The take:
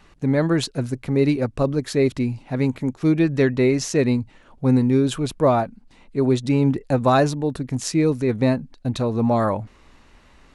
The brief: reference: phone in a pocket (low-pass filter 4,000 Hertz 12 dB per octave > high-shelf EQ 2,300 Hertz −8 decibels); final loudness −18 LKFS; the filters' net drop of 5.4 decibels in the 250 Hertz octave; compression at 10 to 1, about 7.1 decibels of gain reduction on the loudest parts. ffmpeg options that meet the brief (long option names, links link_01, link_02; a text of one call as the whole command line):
ffmpeg -i in.wav -af "equalizer=frequency=250:width_type=o:gain=-6.5,acompressor=threshold=-20dB:ratio=10,lowpass=4000,highshelf=frequency=2300:gain=-8,volume=9.5dB" out.wav